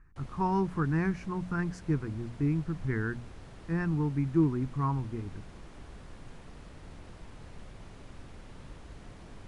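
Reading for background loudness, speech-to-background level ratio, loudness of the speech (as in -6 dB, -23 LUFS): -50.5 LUFS, 19.0 dB, -31.5 LUFS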